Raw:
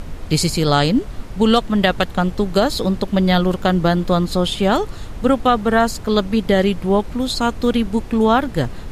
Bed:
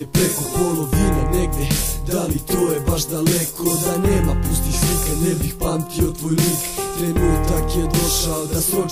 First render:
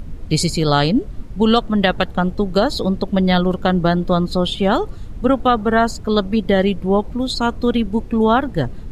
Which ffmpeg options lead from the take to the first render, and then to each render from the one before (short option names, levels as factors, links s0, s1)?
-af "afftdn=nr=11:nf=-31"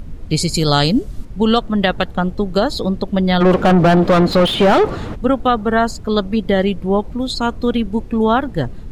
-filter_complex "[0:a]asettb=1/sr,asplit=3[s0][s1][s2];[s0]atrim=end=0.544[s3];[s1]atrim=start=0.54:end=1.25,asetpts=PTS-STARTPTS,afade=t=in:d=0.004:c=qsin,afade=t=out:st=0.706:d=0.004:c=qsin,bass=f=250:g=2,treble=f=4000:g=11[s4];[s2]atrim=start=1.246[s5];[s3][s4]acrossfade=d=0.004:c1=hsin:c2=qsin[s6];[s6][s5]acrossfade=d=0.004:c1=qsin:c2=hsin,asplit=3[s7][s8][s9];[s7]afade=t=out:st=3.4:d=0.02[s10];[s8]asplit=2[s11][s12];[s12]highpass=f=720:p=1,volume=35.5,asoftclip=type=tanh:threshold=0.708[s13];[s11][s13]amix=inputs=2:normalize=0,lowpass=f=1100:p=1,volume=0.501,afade=t=in:st=3.4:d=0.02,afade=t=out:st=5.14:d=0.02[s14];[s9]afade=t=in:st=5.14:d=0.02[s15];[s10][s14][s15]amix=inputs=3:normalize=0"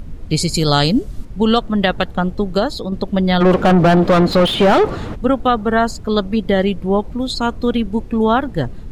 -filter_complex "[0:a]asplit=2[s0][s1];[s0]atrim=end=2.92,asetpts=PTS-STARTPTS,afade=t=out:st=2.51:d=0.41:silence=0.473151[s2];[s1]atrim=start=2.92,asetpts=PTS-STARTPTS,afade=t=in:d=0.004:c=hsin:silence=0.473151[s3];[s2][s3]concat=n=2:v=0:a=1"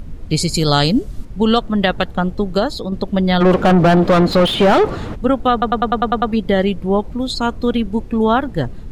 -filter_complex "[0:a]asplit=9[s0][s1][s2][s3][s4][s5][s6][s7][s8];[s0]atrim=end=5.622[s9];[s1]atrim=start=5.518:end=5.622[s10];[s2]atrim=start=5.518:end=5.622[s11];[s3]atrim=start=5.518:end=5.622[s12];[s4]atrim=start=5.518:end=5.622[s13];[s5]atrim=start=5.518:end=5.622[s14];[s6]atrim=start=5.518:end=5.622[s15];[s7]atrim=start=5.518:end=5.622[s16];[s8]atrim=start=6.318[s17];[s9][s10]acrossfade=d=0.004:c1=hsin:c2=hsin[s18];[s18][s11]acrossfade=d=0.004:c1=hsin:c2=hsin[s19];[s19][s12]acrossfade=d=0.004:c1=hsin:c2=hsin[s20];[s20][s13]acrossfade=d=0.004:c1=hsin:c2=hsin[s21];[s21][s14]acrossfade=d=0.004:c1=hsin:c2=hsin[s22];[s22][s15]acrossfade=d=0.004:c1=hsin:c2=hsin[s23];[s23][s16]acrossfade=d=0.004:c1=hsin:c2=hsin[s24];[s24][s17]acrossfade=d=0.004:c1=hsin:c2=hsin"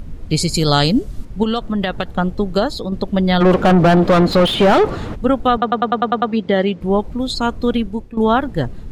-filter_complex "[0:a]asettb=1/sr,asplit=3[s0][s1][s2];[s0]atrim=end=1.434[s3];[s1]atrim=start=1.43:end=2.08,asetpts=PTS-STARTPTS,afade=t=in:d=0.004:c=qsin,afade=t=out:st=0.646:d=0.004:c=qsin,acompressor=threshold=0.178:ratio=4:attack=3.2:release=140:knee=1:detection=peak[s4];[s2]atrim=start=2.076[s5];[s3][s4]acrossfade=d=0.004:c1=hsin:c2=qsin[s6];[s6][s5]acrossfade=d=0.004:c1=qsin:c2=hsin,asettb=1/sr,asplit=3[s7][s8][s9];[s7]atrim=end=5.574[s10];[s8]atrim=start=5.57:end=6.81,asetpts=PTS-STARTPTS,afade=t=in:d=0.004:c=qsin,afade=t=out:st=1.236:d=0.004:c=qsin,highpass=160,lowpass=5400[s11];[s9]atrim=start=6.806[s12];[s10][s11]acrossfade=d=0.004:c1=hsin:c2=qsin[s13];[s13][s12]acrossfade=d=0.004:c1=qsin:c2=hsin,asplit=2[s14][s15];[s14]atrim=end=8.17,asetpts=PTS-STARTPTS,afade=t=out:st=7.76:d=0.41:silence=0.199526[s16];[s15]atrim=start=8.17,asetpts=PTS-STARTPTS,afade=t=in:d=0.004:c=hsin:silence=0.199526[s17];[s16][s17]concat=n=2:v=0:a=1"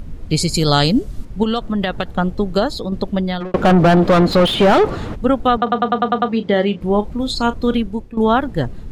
-filter_complex "[0:a]asettb=1/sr,asplit=3[s0][s1][s2];[s0]atrim=end=5.634[s3];[s1]atrim=start=5.63:end=7.79,asetpts=PTS-STARTPTS,afade=t=in:d=0.004:c=qsin,afade=t=out:st=2.156:d=0.004:c=qsin,asplit=2[s4][s5];[s5]adelay=34,volume=0.237[s6];[s4][s6]amix=inputs=2:normalize=0,atrim=end_sample=95256[s7];[s2]atrim=start=7.786[s8];[s3][s7]acrossfade=d=0.004:c1=hsin:c2=qsin[s9];[s9][s8]acrossfade=d=0.004:c1=qsin:c2=hsin,asplit=2[s10][s11];[s10]atrim=end=3.54,asetpts=PTS-STARTPTS,afade=t=out:st=3.06:d=0.48[s12];[s11]atrim=start=3.54,asetpts=PTS-STARTPTS,afade=t=in:d=0.004:c=hsin[s13];[s12][s13]concat=n=2:v=0:a=1"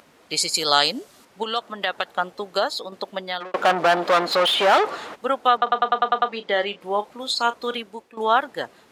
-af "highpass=710"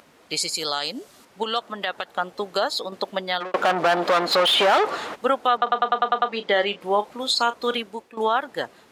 -af "alimiter=limit=0.224:level=0:latency=1:release=187,dynaudnorm=f=890:g=5:m=1.5"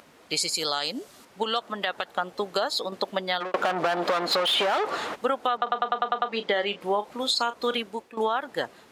-af "acompressor=threshold=0.0891:ratio=6"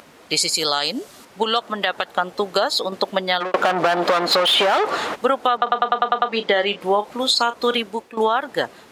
-af "volume=2.24"